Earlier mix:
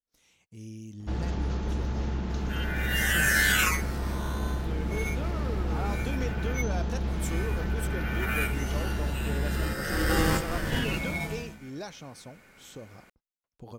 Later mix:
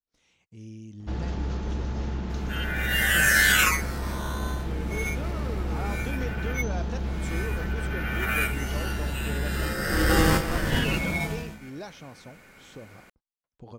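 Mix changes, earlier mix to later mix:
speech: add distance through air 75 m; second sound +4.0 dB

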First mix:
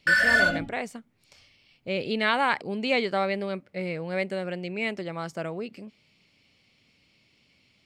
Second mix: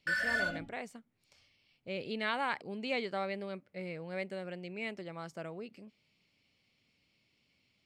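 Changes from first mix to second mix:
speech -10.0 dB; background -12.0 dB

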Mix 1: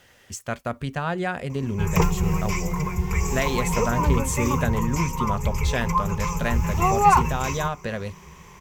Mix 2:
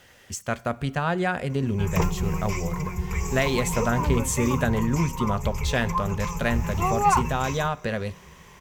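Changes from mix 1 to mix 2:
background -4.0 dB; reverb: on, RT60 0.95 s

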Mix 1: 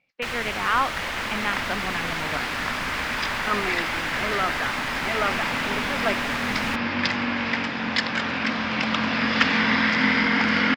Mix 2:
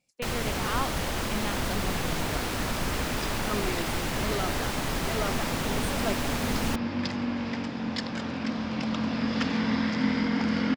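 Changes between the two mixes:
speech: remove Gaussian low-pass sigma 2.6 samples; first sound +8.0 dB; master: add peaking EQ 2 kHz -15 dB 2.6 oct

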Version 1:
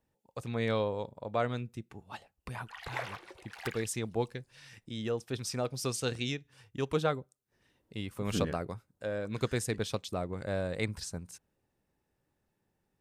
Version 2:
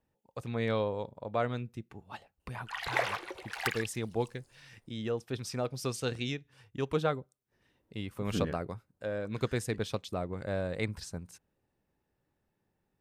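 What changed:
speech: add peaking EQ 8.2 kHz -5 dB 1.7 oct; background +8.5 dB

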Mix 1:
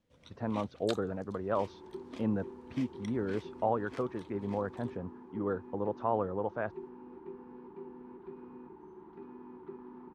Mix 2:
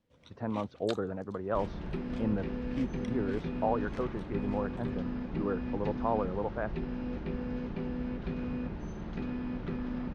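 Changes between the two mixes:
second sound: remove two resonant band-passes 590 Hz, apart 1.3 oct; master: add treble shelf 8.4 kHz -8.5 dB

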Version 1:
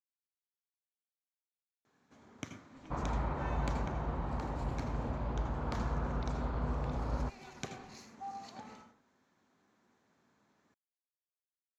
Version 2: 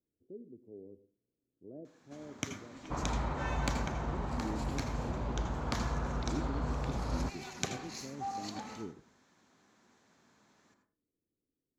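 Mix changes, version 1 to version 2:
speech: unmuted; first sound +4.5 dB; master: add treble shelf 3.1 kHz +8 dB

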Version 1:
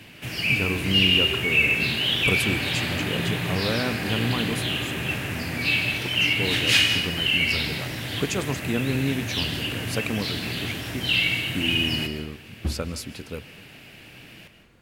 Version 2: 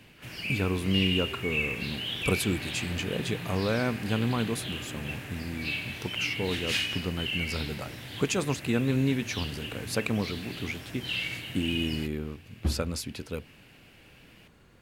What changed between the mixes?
background -8.0 dB; reverb: off

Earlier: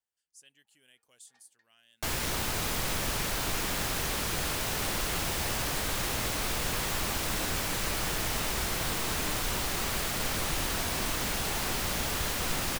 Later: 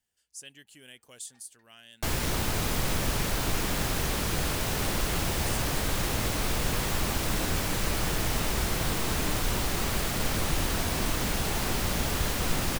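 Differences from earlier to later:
speech +11.5 dB; master: add bass shelf 490 Hz +6.5 dB

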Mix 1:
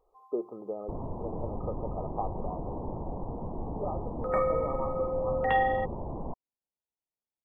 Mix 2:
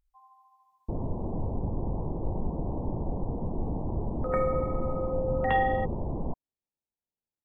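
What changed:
speech: muted; first sound: add tilt shelf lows +6 dB, about 730 Hz

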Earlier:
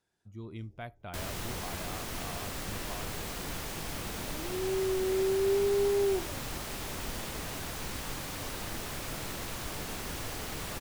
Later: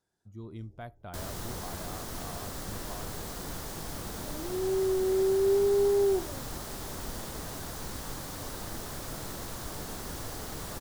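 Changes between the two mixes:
second sound +3.0 dB; master: add peaking EQ 2.5 kHz -9 dB 0.85 oct

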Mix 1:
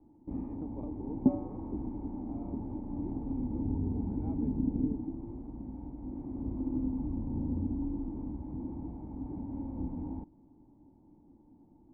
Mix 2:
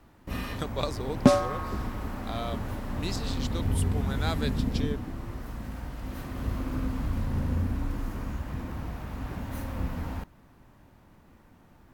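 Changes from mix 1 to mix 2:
first sound -6.0 dB; master: remove cascade formant filter u

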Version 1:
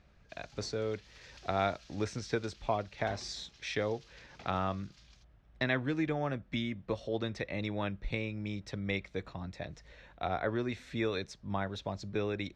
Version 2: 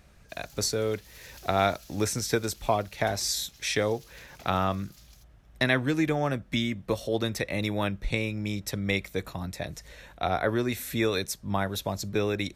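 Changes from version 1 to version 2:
speech +6.5 dB; master: remove Bessel low-pass 3.9 kHz, order 4

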